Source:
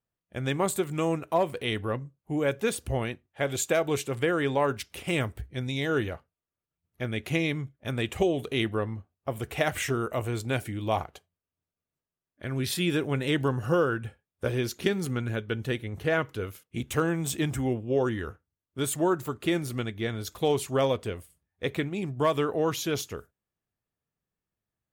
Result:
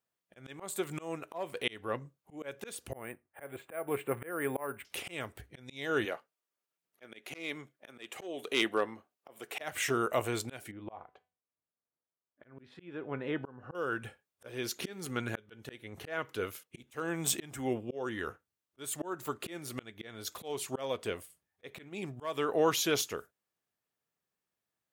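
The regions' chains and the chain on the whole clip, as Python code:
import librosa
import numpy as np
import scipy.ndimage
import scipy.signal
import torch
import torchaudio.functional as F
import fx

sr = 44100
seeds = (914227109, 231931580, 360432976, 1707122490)

y = fx.chain(x, sr, fx.lowpass(hz=2200.0, slope=24),
    fx.resample_bad(factor=4, down='none', up='hold'), at=(2.92, 4.85))
y = fx.chain(y, sr, fx.highpass(hz=250.0, slope=12),
    fx.clip_hard(threshold_db=-18.5), at=(6.05, 9.61))
y = fx.chain(y, sr, fx.lowpass(hz=1500.0, slope=12),
    fx.comb_fb(f0_hz=250.0, decay_s=0.32, harmonics='all', damping=0.0, mix_pct=50), at=(10.71, 13.75))
y = fx.highpass(y, sr, hz=450.0, slope=6)
y = fx.auto_swell(y, sr, attack_ms=378.0)
y = F.gain(torch.from_numpy(y), 2.5).numpy()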